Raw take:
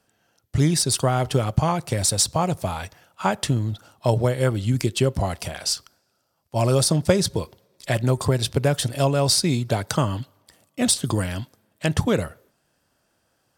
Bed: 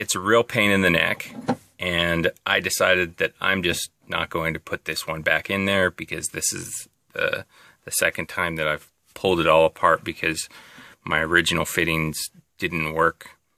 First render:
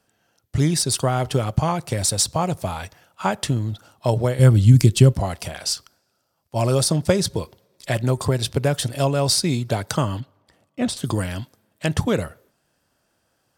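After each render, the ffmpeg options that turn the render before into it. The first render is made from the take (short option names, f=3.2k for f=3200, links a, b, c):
-filter_complex "[0:a]asettb=1/sr,asplit=3[a][b][c];[a]atrim=end=4.394[d];[b]atrim=start=4.39:end=5.14,asetpts=PTS-STARTPTS,afade=t=in:d=0.004:c=qsin,afade=t=out:st=0.746:d=0.004:c=qsin,bass=f=250:g=12,treble=f=4k:g=5[e];[c]atrim=start=5.136[f];[d][e]acrossfade=d=0.004:c1=hsin:c2=qsin[g];[g][f]acrossfade=d=0.004:c1=qsin:c2=hsin,asettb=1/sr,asplit=3[h][i][j];[h]atrim=end=10.204[k];[i]atrim=start=10.2:end=10.97,asetpts=PTS-STARTPTS,afade=t=in:d=0.004:c=qsin,afade=t=out:st=0.766:d=0.004:c=qsin,lowpass=f=2k:p=1[l];[j]atrim=start=10.966[m];[k][l]acrossfade=d=0.004:c1=hsin:c2=qsin[n];[n][m]acrossfade=d=0.004:c1=qsin:c2=hsin"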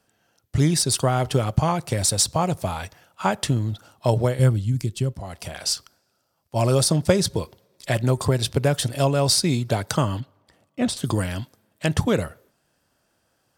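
-filter_complex "[0:a]asplit=3[a][b][c];[a]atrim=end=4.64,asetpts=PTS-STARTPTS,afade=t=out:st=4.24:d=0.4:silence=0.266073[d];[b]atrim=start=4.64:end=5.24,asetpts=PTS-STARTPTS,volume=-11.5dB[e];[c]atrim=start=5.24,asetpts=PTS-STARTPTS,afade=t=in:d=0.4:silence=0.266073[f];[d][e][f]concat=n=3:v=0:a=1"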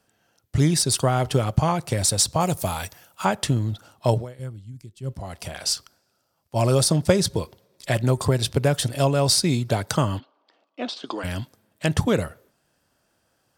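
-filter_complex "[0:a]asettb=1/sr,asplit=3[a][b][c];[a]atrim=end=2.404[d];[b]atrim=start=2.4:end=3.25,asetpts=PTS-STARTPTS,afade=t=in:d=0.004:c=qsin,afade=t=out:st=0.846:d=0.004:c=qsin,aemphasis=mode=production:type=50kf[e];[c]atrim=start=3.246[f];[d][e]acrossfade=d=0.004:c1=hsin:c2=qsin[g];[g][f]acrossfade=d=0.004:c1=qsin:c2=hsin,asplit=3[h][i][j];[h]afade=t=out:st=10.18:d=0.02[k];[i]highpass=f=320:w=0.5412,highpass=f=320:w=1.3066,equalizer=f=380:t=q:w=4:g=-4,equalizer=f=540:t=q:w=4:g=-4,equalizer=f=1.9k:t=q:w=4:g=-6,lowpass=f=4.9k:w=0.5412,lowpass=f=4.9k:w=1.3066,afade=t=in:st=10.18:d=0.02,afade=t=out:st=11.23:d=0.02[l];[j]afade=t=in:st=11.23:d=0.02[m];[k][l][m]amix=inputs=3:normalize=0,asplit=3[n][o][p];[n]atrim=end=4.25,asetpts=PTS-STARTPTS,afade=t=out:st=4.11:d=0.14:c=qsin:silence=0.149624[q];[o]atrim=start=4.25:end=5.02,asetpts=PTS-STARTPTS,volume=-16.5dB[r];[p]atrim=start=5.02,asetpts=PTS-STARTPTS,afade=t=in:d=0.14:c=qsin:silence=0.149624[s];[q][r][s]concat=n=3:v=0:a=1"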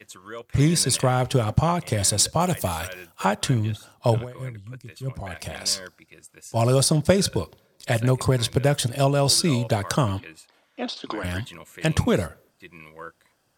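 -filter_complex "[1:a]volume=-20dB[a];[0:a][a]amix=inputs=2:normalize=0"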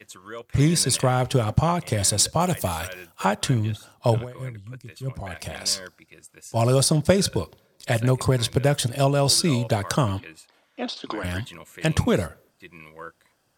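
-af anull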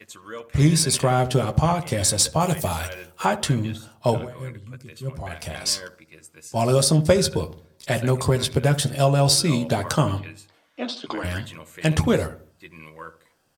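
-filter_complex "[0:a]asplit=2[a][b];[b]adelay=13,volume=-7dB[c];[a][c]amix=inputs=2:normalize=0,asplit=2[d][e];[e]adelay=71,lowpass=f=880:p=1,volume=-12dB,asplit=2[f][g];[g]adelay=71,lowpass=f=880:p=1,volume=0.45,asplit=2[h][i];[i]adelay=71,lowpass=f=880:p=1,volume=0.45,asplit=2[j][k];[k]adelay=71,lowpass=f=880:p=1,volume=0.45,asplit=2[l][m];[m]adelay=71,lowpass=f=880:p=1,volume=0.45[n];[d][f][h][j][l][n]amix=inputs=6:normalize=0"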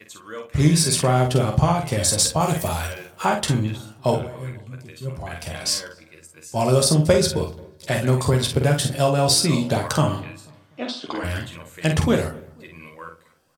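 -filter_complex "[0:a]asplit=2[a][b];[b]adelay=47,volume=-5.5dB[c];[a][c]amix=inputs=2:normalize=0,asplit=2[d][e];[e]adelay=245,lowpass=f=1.6k:p=1,volume=-22dB,asplit=2[f][g];[g]adelay=245,lowpass=f=1.6k:p=1,volume=0.43,asplit=2[h][i];[i]adelay=245,lowpass=f=1.6k:p=1,volume=0.43[j];[d][f][h][j]amix=inputs=4:normalize=0"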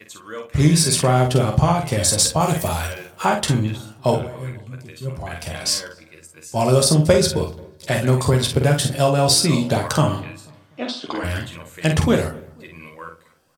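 -af "volume=2dB,alimiter=limit=-3dB:level=0:latency=1"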